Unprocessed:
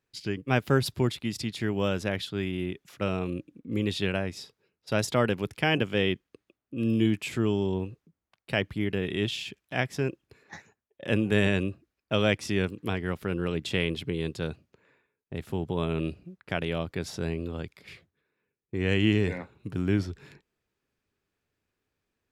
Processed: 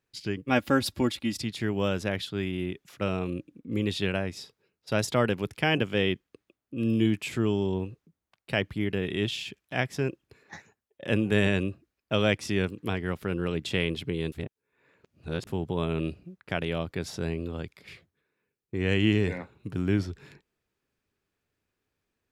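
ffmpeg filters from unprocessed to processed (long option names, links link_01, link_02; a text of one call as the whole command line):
ffmpeg -i in.wav -filter_complex "[0:a]asettb=1/sr,asplit=3[link_01][link_02][link_03];[link_01]atrim=end=0.494[link_04];[link_02]atrim=start=0.49:end=1.39,asetpts=PTS-STARTPTS,afade=type=in:duration=0.004:curve=qsin,afade=type=out:start_time=0.896:duration=0.004:curve=qsin,aecho=1:1:3.6:0.65,atrim=end_sample=39690[link_05];[link_03]atrim=start=1.386[link_06];[link_04][link_05]acrossfade=duration=0.004:curve1=hsin:curve2=qsin[link_07];[link_07][link_06]acrossfade=duration=0.004:curve1=qsin:curve2=hsin,asplit=3[link_08][link_09][link_10];[link_08]atrim=end=14.322[link_11];[link_09]atrim=start=14.318:end=15.472,asetpts=PTS-STARTPTS,areverse[link_12];[link_10]atrim=start=15.468[link_13];[link_11][link_12]acrossfade=duration=0.004:curve1=hsin:curve2=hsin[link_14];[link_14][link_13]acrossfade=duration=0.004:curve1=hsin:curve2=hsin" out.wav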